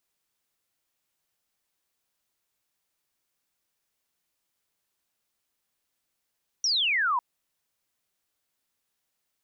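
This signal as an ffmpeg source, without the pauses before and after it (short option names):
-f lavfi -i "aevalsrc='0.0794*clip(t/0.002,0,1)*clip((0.55-t)/0.002,0,1)*sin(2*PI*5900*0.55/log(940/5900)*(exp(log(940/5900)*t/0.55)-1))':d=0.55:s=44100"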